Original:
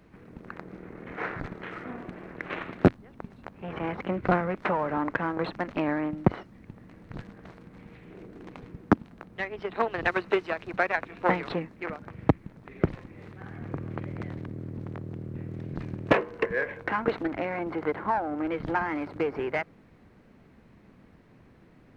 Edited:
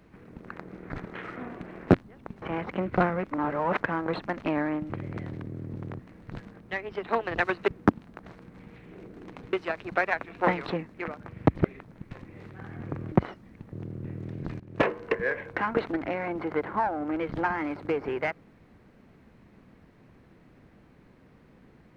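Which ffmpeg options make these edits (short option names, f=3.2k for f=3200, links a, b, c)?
-filter_complex "[0:a]asplit=17[a][b][c][d][e][f][g][h][i][j][k][l][m][n][o][p][q];[a]atrim=end=0.902[r];[b]atrim=start=1.378:end=2.362[s];[c]atrim=start=2.818:end=3.362[t];[d]atrim=start=3.728:end=4.622[u];[e]atrim=start=4.618:end=5.112,asetpts=PTS-STARTPTS,areverse[v];[f]atrim=start=5.108:end=6.212[w];[g]atrim=start=13.938:end=15.032[x];[h]atrim=start=6.808:end=7.422[y];[i]atrim=start=9.268:end=10.352[z];[j]atrim=start=8.718:end=9.272[aa];[k]atrim=start=7.418:end=8.722[ab];[l]atrim=start=10.348:end=12.372[ac];[m]atrim=start=12.368:end=12.932,asetpts=PTS-STARTPTS,areverse[ad];[n]atrim=start=12.928:end=13.942[ae];[o]atrim=start=6.208:end=6.812[af];[p]atrim=start=15.028:end=15.91,asetpts=PTS-STARTPTS,afade=t=out:st=0.878:d=0.004:c=hsin:silence=0.105925[ag];[q]atrim=start=15.91,asetpts=PTS-STARTPTS,afade=t=in:d=0.31:silence=0.105925[ah];[r][s]acrossfade=d=0.004:c1=hsin:c2=hsin[ai];[ai][t]acrossfade=d=0.004:c1=hsin:c2=hsin[aj];[aj][u]acrossfade=d=0.004:c1=hsin:c2=hsin[ak];[ak][v]acrossfade=d=0.004:c1=hsin:c2=hsin[al];[al][w]acrossfade=d=0.004:c1=hsin:c2=hsin[am];[am][x]acrossfade=d=0.004:c1=hsin:c2=hsin[an];[an][y]acrossfade=d=0.004:c1=hsin:c2=hsin[ao];[ao][z]acrossfade=d=0.004:c1=hsin:c2=hsin[ap];[ap][aa]acrossfade=d=0.004:c1=hsin:c2=hsin[aq];[aq][ab]acrossfade=d=0.004:c1=hsin:c2=hsin[ar];[ar][ac]acrossfade=d=0.004:c1=hsin:c2=hsin[as];[as][ad]acrossfade=d=0.004:c1=hsin:c2=hsin[at];[at][ae]acrossfade=d=0.004:c1=hsin:c2=hsin[au];[au][af]acrossfade=d=0.004:c1=hsin:c2=hsin[av];[ag][ah]concat=n=2:v=0:a=1[aw];[av][aw]acrossfade=d=0.004:c1=hsin:c2=hsin"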